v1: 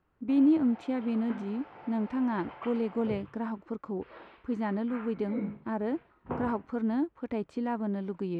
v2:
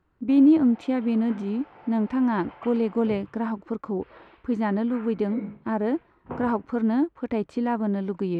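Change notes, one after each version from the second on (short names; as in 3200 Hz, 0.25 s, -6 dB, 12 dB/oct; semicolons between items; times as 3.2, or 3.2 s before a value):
speech +6.5 dB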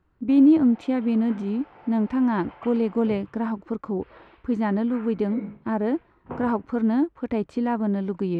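speech: add low shelf 150 Hz +4.5 dB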